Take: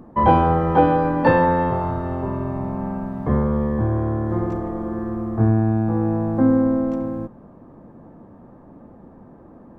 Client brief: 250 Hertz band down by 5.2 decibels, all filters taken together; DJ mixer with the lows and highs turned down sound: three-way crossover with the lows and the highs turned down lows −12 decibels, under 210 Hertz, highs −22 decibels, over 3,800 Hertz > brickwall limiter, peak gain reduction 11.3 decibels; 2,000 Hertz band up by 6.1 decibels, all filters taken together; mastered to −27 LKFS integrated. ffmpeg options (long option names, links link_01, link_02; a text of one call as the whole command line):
ffmpeg -i in.wav -filter_complex "[0:a]acrossover=split=210 3800:gain=0.251 1 0.0794[link_01][link_02][link_03];[link_01][link_02][link_03]amix=inputs=3:normalize=0,equalizer=frequency=250:width_type=o:gain=-3.5,equalizer=frequency=2000:width_type=o:gain=8,volume=-1.5dB,alimiter=limit=-16dB:level=0:latency=1" out.wav